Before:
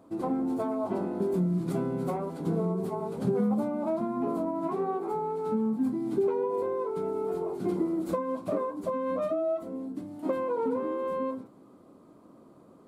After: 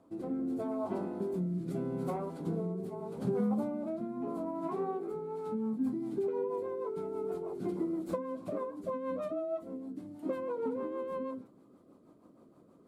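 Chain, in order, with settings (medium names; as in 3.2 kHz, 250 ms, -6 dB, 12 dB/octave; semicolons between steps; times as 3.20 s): rotary cabinet horn 0.8 Hz, later 6.3 Hz, at 5.04 s; trim -4 dB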